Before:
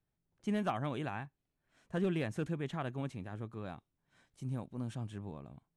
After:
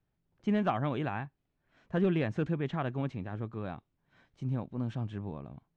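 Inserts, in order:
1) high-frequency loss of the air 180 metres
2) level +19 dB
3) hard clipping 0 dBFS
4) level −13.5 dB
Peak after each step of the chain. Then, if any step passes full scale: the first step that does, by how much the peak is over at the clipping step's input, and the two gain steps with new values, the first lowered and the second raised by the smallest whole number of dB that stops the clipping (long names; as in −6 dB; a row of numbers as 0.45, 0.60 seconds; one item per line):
−24.5, −5.5, −5.5, −19.0 dBFS
no step passes full scale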